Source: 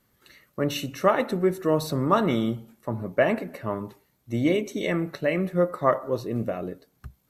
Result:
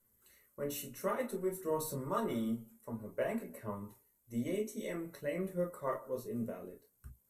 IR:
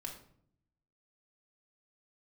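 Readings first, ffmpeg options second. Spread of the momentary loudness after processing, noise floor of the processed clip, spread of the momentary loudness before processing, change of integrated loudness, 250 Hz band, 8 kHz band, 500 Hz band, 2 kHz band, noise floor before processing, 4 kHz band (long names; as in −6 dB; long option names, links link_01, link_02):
10 LU, −74 dBFS, 11 LU, −13.0 dB, −12.5 dB, −4.5 dB, −12.5 dB, −16.0 dB, −68 dBFS, −16.5 dB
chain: -filter_complex "[1:a]atrim=start_sample=2205,afade=type=out:start_time=0.14:duration=0.01,atrim=end_sample=6615,asetrate=70560,aresample=44100[link_01];[0:a][link_01]afir=irnorm=-1:irlink=0,aphaser=in_gain=1:out_gain=1:delay=4.9:decay=0.28:speed=0.55:type=sinusoidal,highshelf=frequency=6300:width_type=q:width=1.5:gain=13,volume=-8dB"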